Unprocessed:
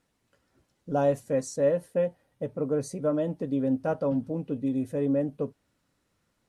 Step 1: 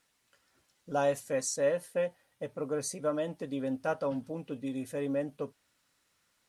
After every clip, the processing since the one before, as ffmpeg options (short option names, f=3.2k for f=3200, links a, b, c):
-af "tiltshelf=f=760:g=-8,volume=-2dB"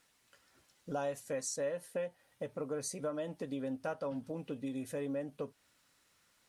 -af "acompressor=threshold=-41dB:ratio=2.5,volume=2.5dB"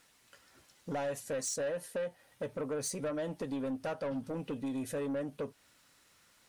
-af "asoftclip=type=tanh:threshold=-36dB,volume=5.5dB"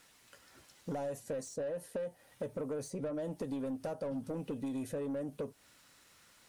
-filter_complex "[0:a]acrossover=split=870|6200[a][b][c];[a]acompressor=threshold=-38dB:ratio=4[d];[b]acompressor=threshold=-60dB:ratio=4[e];[c]acompressor=threshold=-57dB:ratio=4[f];[d][e][f]amix=inputs=3:normalize=0,volume=2.5dB"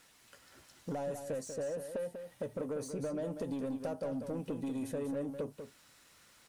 -af "aecho=1:1:193:0.398"